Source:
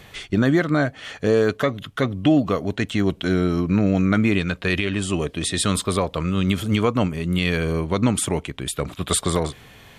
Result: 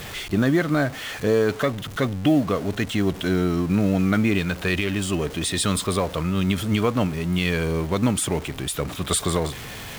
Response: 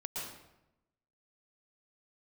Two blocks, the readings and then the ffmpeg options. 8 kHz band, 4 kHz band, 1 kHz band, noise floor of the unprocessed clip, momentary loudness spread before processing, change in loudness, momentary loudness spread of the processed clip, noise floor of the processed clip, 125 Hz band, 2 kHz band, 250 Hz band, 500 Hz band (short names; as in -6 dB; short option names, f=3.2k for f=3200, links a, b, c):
-0.5 dB, -0.5 dB, -1.0 dB, -48 dBFS, 7 LU, -1.5 dB, 6 LU, -36 dBFS, -1.0 dB, -1.0 dB, -1.5 dB, -1.5 dB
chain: -af "aeval=exprs='val(0)+0.5*0.0355*sgn(val(0))':c=same,acrusher=bits=8:mode=log:mix=0:aa=0.000001,volume=-2.5dB"